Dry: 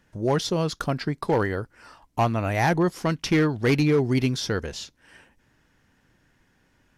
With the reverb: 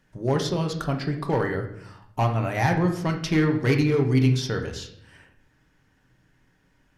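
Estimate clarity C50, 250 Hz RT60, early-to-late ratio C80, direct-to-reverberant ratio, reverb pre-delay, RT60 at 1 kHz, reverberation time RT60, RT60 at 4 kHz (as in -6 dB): 8.5 dB, 1.0 s, 11.5 dB, 3.0 dB, 5 ms, 0.65 s, 0.70 s, 0.55 s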